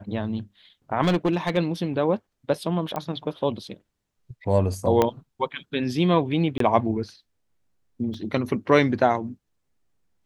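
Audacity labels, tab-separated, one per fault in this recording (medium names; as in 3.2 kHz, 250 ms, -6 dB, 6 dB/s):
1.030000	1.580000	clipped -16.5 dBFS
2.960000	2.960000	pop -16 dBFS
5.020000	5.020000	pop -7 dBFS
6.580000	6.600000	dropout 23 ms
8.140000	8.140000	dropout 3.2 ms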